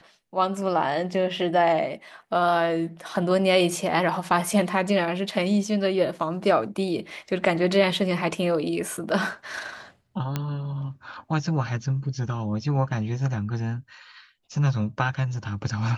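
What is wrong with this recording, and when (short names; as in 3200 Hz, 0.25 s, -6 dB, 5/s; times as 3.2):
10.36 pop -13 dBFS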